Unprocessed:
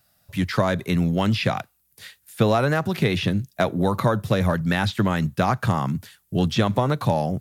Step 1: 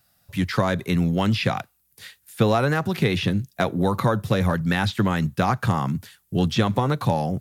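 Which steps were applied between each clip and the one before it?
notch 620 Hz, Q 12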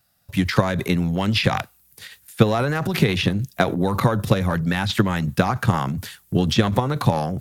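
transient shaper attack +8 dB, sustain +12 dB; gain -2.5 dB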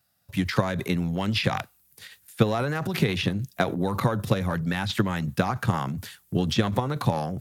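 HPF 62 Hz; gain -5 dB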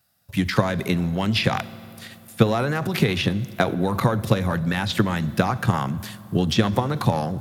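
reverb RT60 3.0 s, pre-delay 5 ms, DRR 16.5 dB; gain +3.5 dB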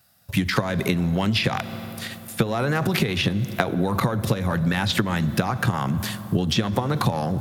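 compressor 12:1, threshold -25 dBFS, peak gain reduction 15.5 dB; gain +7 dB

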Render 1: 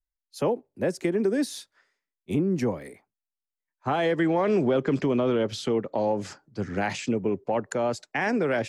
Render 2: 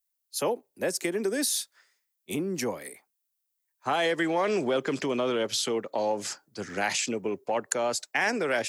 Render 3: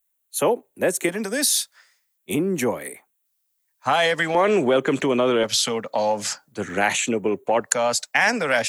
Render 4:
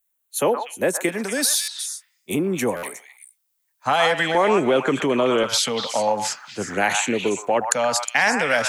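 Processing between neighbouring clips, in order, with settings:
RIAA curve recording
LFO notch square 0.46 Hz 360–5000 Hz; gain +8 dB
delay with a stepping band-pass 0.121 s, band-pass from 1100 Hz, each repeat 1.4 oct, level -2 dB; stuck buffer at 1.61/2.76, samples 512, times 5

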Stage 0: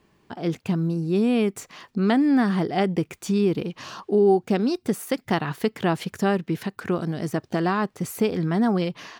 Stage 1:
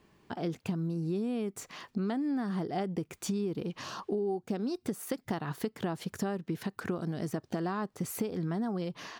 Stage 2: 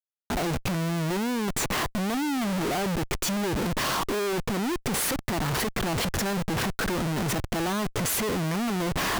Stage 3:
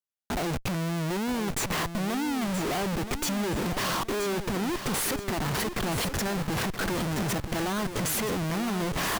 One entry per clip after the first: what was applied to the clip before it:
dynamic EQ 2400 Hz, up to -6 dB, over -44 dBFS, Q 1.3; compressor, threshold -28 dBFS, peak gain reduction 13 dB; gain -2 dB
sample leveller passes 1; Schmitt trigger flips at -46 dBFS; gain +4.5 dB
feedback echo 0.974 s, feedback 34%, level -9.5 dB; gain -2 dB

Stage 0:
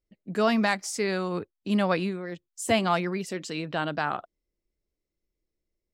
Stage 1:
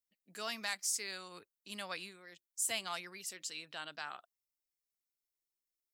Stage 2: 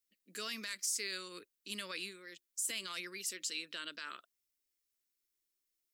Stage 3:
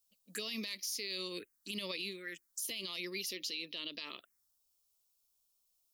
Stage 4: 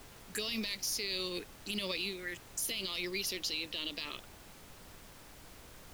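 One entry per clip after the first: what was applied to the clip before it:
pre-emphasis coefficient 0.97
limiter -31.5 dBFS, peak gain reduction 9.5 dB; fixed phaser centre 320 Hz, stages 4; gain +5.5 dB
envelope phaser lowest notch 310 Hz, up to 1500 Hz, full sweep at -42 dBFS; limiter -37.5 dBFS, peak gain reduction 10.5 dB; gain +8.5 dB
added noise pink -57 dBFS; gain +3.5 dB

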